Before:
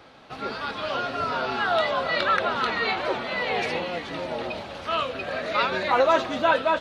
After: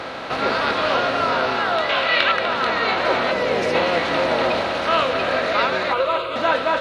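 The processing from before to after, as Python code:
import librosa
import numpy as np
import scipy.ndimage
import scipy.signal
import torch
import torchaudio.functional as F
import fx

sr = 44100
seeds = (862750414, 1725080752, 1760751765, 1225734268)

y = fx.bin_compress(x, sr, power=0.6)
y = fx.peak_eq(y, sr, hz=2700.0, db=13.0, octaves=1.4, at=(1.89, 2.32))
y = fx.spec_box(y, sr, start_s=3.32, length_s=0.42, low_hz=640.0, high_hz=4700.0, gain_db=-7)
y = fx.rider(y, sr, range_db=4, speed_s=0.5)
y = fx.fixed_phaser(y, sr, hz=1200.0, stages=8, at=(5.93, 6.36))
y = y + 10.0 ** (-11.0 / 20.0) * np.pad(y, (int(247 * sr / 1000.0), 0))[:len(y)]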